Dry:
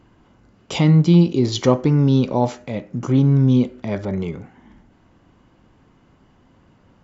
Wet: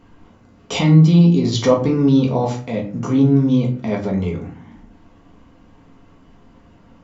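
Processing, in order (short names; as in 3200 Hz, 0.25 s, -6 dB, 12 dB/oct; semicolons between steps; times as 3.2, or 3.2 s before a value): notches 50/100/150/200 Hz; in parallel at -2 dB: compressor, threshold -24 dBFS, peak gain reduction 15 dB; on the sum: shoebox room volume 190 m³, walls furnished, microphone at 1.7 m; gain -4 dB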